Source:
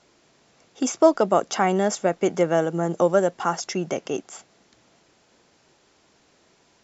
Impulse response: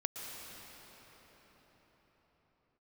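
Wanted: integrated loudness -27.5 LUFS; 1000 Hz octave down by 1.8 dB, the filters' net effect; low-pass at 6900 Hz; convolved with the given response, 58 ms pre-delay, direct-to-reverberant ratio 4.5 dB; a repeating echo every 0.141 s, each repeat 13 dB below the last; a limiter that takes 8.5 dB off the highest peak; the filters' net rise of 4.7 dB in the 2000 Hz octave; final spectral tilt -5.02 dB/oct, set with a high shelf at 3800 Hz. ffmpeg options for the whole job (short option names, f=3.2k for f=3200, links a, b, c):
-filter_complex "[0:a]lowpass=6.9k,equalizer=f=1k:t=o:g=-4.5,equalizer=f=2k:t=o:g=8.5,highshelf=f=3.8k:g=-3,alimiter=limit=-13.5dB:level=0:latency=1,aecho=1:1:141|282|423:0.224|0.0493|0.0108,asplit=2[a][b];[1:a]atrim=start_sample=2205,adelay=58[c];[b][c]afir=irnorm=-1:irlink=0,volume=-6dB[d];[a][d]amix=inputs=2:normalize=0,volume=-2.5dB"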